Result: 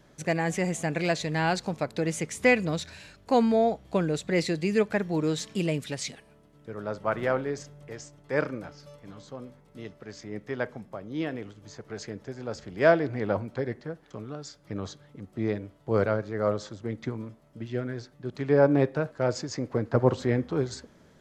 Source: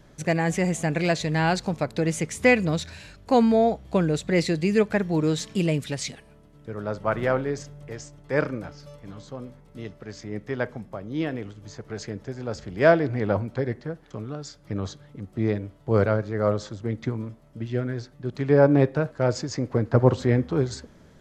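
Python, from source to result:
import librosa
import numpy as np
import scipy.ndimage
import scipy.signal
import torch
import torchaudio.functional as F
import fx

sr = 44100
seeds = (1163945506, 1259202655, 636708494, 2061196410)

y = fx.low_shelf(x, sr, hz=110.0, db=-9.0)
y = y * librosa.db_to_amplitude(-2.5)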